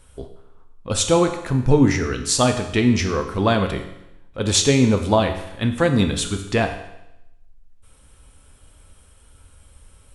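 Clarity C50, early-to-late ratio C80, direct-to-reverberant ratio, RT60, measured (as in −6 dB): 9.0 dB, 11.0 dB, 5.0 dB, 0.85 s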